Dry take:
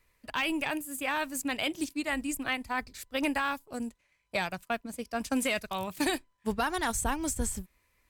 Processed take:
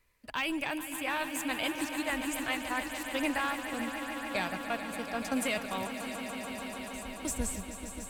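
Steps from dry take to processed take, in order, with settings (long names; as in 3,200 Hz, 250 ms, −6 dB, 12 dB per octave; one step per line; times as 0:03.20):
0:05.87–0:07.25: guitar amp tone stack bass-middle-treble 6-0-2
echo that builds up and dies away 145 ms, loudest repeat 5, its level −12 dB
level −2.5 dB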